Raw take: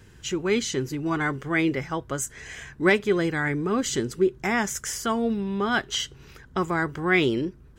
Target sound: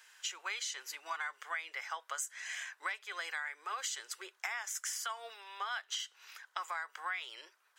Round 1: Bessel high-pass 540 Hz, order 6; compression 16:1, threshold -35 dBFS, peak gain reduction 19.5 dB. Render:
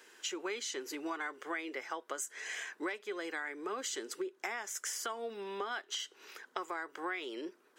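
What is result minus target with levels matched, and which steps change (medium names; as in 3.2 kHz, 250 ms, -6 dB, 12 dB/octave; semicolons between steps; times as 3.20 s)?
500 Hz band +13.0 dB
change: Bessel high-pass 1.2 kHz, order 6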